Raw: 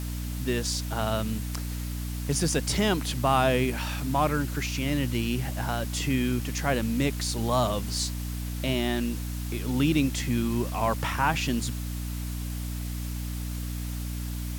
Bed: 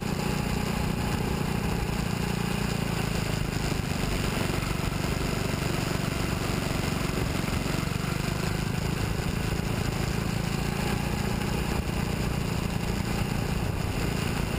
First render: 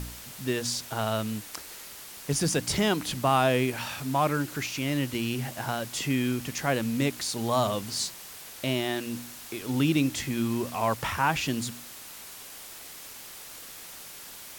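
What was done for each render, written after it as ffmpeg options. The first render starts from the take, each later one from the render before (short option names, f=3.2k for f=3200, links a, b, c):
-af "bandreject=f=60:t=h:w=4,bandreject=f=120:t=h:w=4,bandreject=f=180:t=h:w=4,bandreject=f=240:t=h:w=4,bandreject=f=300:t=h:w=4"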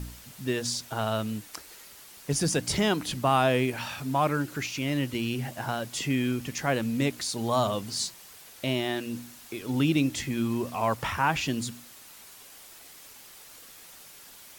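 -af "afftdn=nr=6:nf=-44"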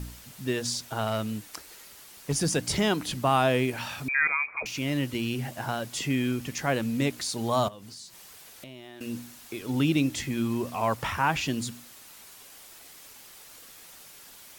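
-filter_complex "[0:a]asettb=1/sr,asplit=3[a][b][c];[a]atrim=end=1.074[d];[b]atrim=start=1.07:end=2.51,asetpts=PTS-STARTPTS,afade=t=in:d=0.004:c=qsin,afade=t=out:st=1.436:d=0.004:c=qsin,asoftclip=type=hard:threshold=-19.5dB[e];[c]atrim=start=2.506[f];[d][e]acrossfade=d=0.004:c1=hsin:c2=qsin[g];[g][f]acrossfade=d=0.004:c1=qsin:c2=hsin,asettb=1/sr,asplit=3[h][i][j];[h]atrim=end=4.084[k];[i]atrim=start=4.08:end=4.66,asetpts=PTS-STARTPTS,afade=t=in:d=0.004:c=qsin,afade=t=out:st=0.576:d=0.004:c=qsin,lowpass=f=2.2k:t=q:w=0.5098,lowpass=f=2.2k:t=q:w=0.6013,lowpass=f=2.2k:t=q:w=0.9,lowpass=f=2.2k:t=q:w=2.563,afreqshift=-2600[l];[j]atrim=start=4.656[m];[k][l]acrossfade=d=0.004:c1=hsin:c2=qsin[n];[n][m]acrossfade=d=0.004:c1=qsin:c2=hsin,asettb=1/sr,asplit=3[o][p][q];[o]atrim=end=7.684[r];[p]atrim=start=7.68:end=9.01,asetpts=PTS-STARTPTS,afade=t=in:d=0.004:c=qsin,afade=t=out:st=1.326:d=0.004:c=qsin,acompressor=threshold=-42dB:ratio=6:attack=3.2:release=140:knee=1:detection=peak[s];[q]atrim=start=9.006[t];[r][s]acrossfade=d=0.004:c1=hsin:c2=qsin[u];[u][t]acrossfade=d=0.004:c1=qsin:c2=hsin"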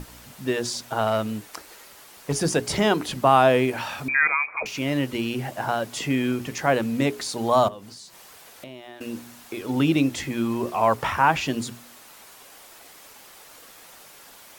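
-af "equalizer=f=710:w=0.39:g=7.5,bandreject=f=60:t=h:w=6,bandreject=f=120:t=h:w=6,bandreject=f=180:t=h:w=6,bandreject=f=240:t=h:w=6,bandreject=f=300:t=h:w=6,bandreject=f=360:t=h:w=6,bandreject=f=420:t=h:w=6"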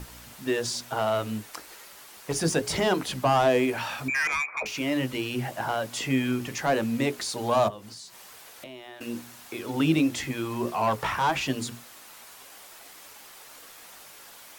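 -filter_complex "[0:a]acrossover=split=680[a][b];[a]flanger=delay=15:depth=3.9:speed=0.96[c];[b]asoftclip=type=tanh:threshold=-22.5dB[d];[c][d]amix=inputs=2:normalize=0"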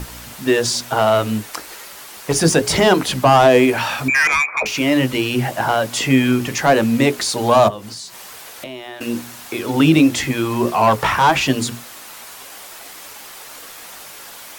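-af "volume=11dB,alimiter=limit=-3dB:level=0:latency=1"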